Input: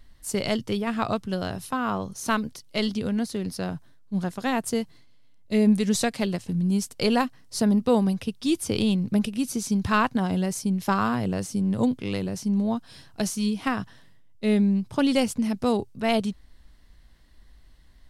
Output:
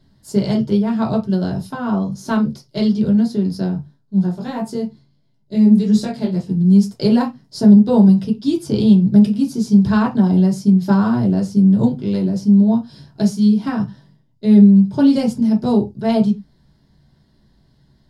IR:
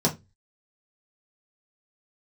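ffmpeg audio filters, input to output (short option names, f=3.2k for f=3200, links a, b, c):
-filter_complex "[1:a]atrim=start_sample=2205,afade=t=out:st=0.15:d=0.01,atrim=end_sample=7056,asetrate=39249,aresample=44100[a];[0:a][a]afir=irnorm=-1:irlink=0,asplit=3[b][c][d];[b]afade=t=out:st=3.68:d=0.02[e];[c]flanger=delay=19:depth=3.6:speed=1.5,afade=t=in:st=3.68:d=0.02,afade=t=out:st=6.36:d=0.02[f];[d]afade=t=in:st=6.36:d=0.02[g];[e][f][g]amix=inputs=3:normalize=0,volume=-12dB"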